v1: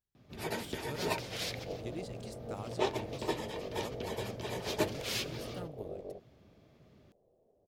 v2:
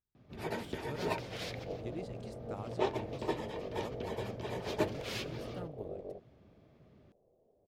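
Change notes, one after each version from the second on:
master: add high shelf 3600 Hz -11 dB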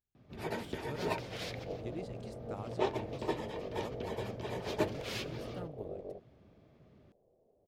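none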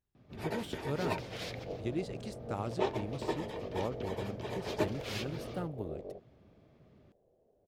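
speech +7.5 dB

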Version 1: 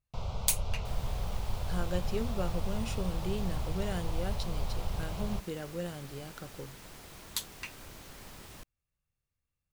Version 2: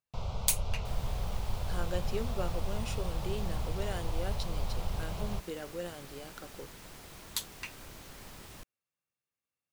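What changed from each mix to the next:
speech: add HPF 270 Hz 12 dB/oct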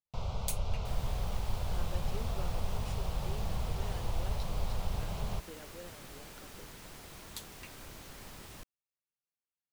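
speech -10.0 dB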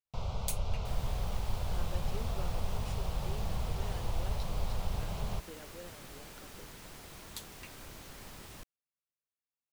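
none

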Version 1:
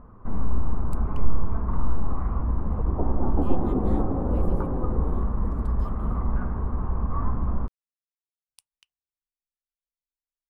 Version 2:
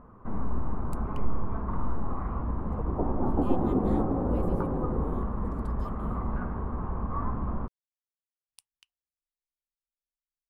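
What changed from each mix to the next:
first sound: add low shelf 96 Hz -9 dB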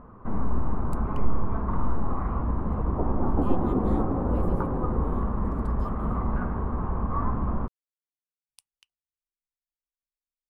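first sound +4.0 dB

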